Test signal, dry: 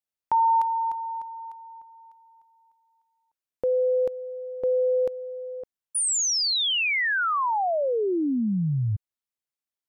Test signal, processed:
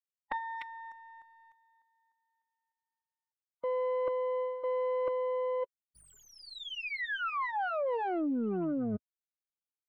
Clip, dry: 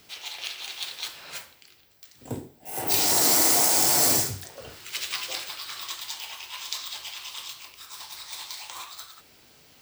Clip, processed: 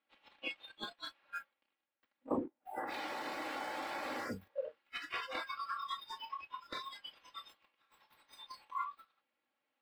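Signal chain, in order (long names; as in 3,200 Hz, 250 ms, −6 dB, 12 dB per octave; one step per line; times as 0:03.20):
lower of the sound and its delayed copy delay 3.6 ms
noise reduction from a noise print of the clip's start 26 dB
meter weighting curve A
reversed playback
downward compressor 12 to 1, threshold −40 dBFS
reversed playback
leveller curve on the samples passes 1
high-frequency loss of the air 500 metres
level +8 dB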